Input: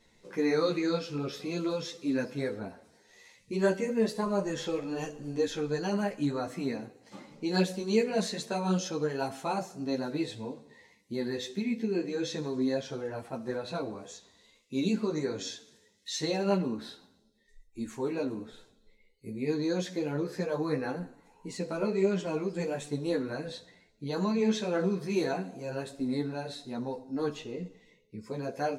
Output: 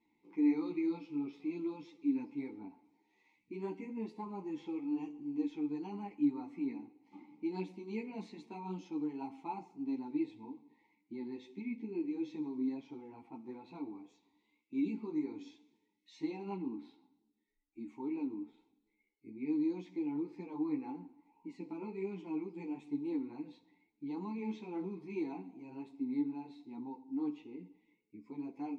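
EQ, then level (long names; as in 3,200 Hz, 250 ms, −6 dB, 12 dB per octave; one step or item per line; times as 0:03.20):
formant filter u
low-shelf EQ 71 Hz +7 dB
+1.5 dB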